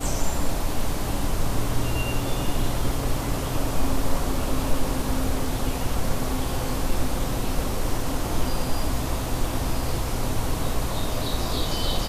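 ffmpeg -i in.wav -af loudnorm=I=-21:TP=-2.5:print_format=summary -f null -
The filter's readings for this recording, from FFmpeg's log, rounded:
Input Integrated:    -27.8 LUFS
Input True Peak:      -8.4 dBTP
Input LRA:             0.6 LU
Input Threshold:     -37.8 LUFS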